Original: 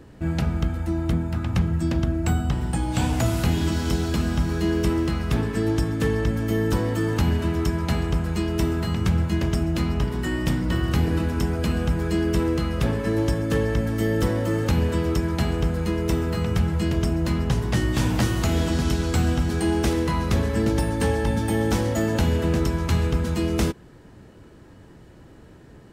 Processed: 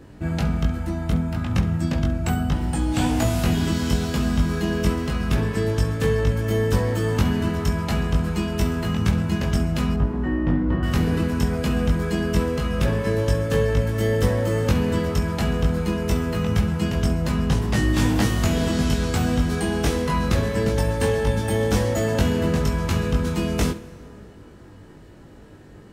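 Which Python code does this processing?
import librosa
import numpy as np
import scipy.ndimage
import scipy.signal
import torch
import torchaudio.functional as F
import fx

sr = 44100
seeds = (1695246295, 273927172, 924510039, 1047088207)

p1 = fx.lowpass(x, sr, hz=1300.0, slope=12, at=(9.94, 10.83))
p2 = p1 + fx.room_early_taps(p1, sr, ms=(20, 68), db=(-3.0, -14.5), dry=0)
y = fx.rev_plate(p2, sr, seeds[0], rt60_s=3.0, hf_ratio=0.6, predelay_ms=0, drr_db=16.5)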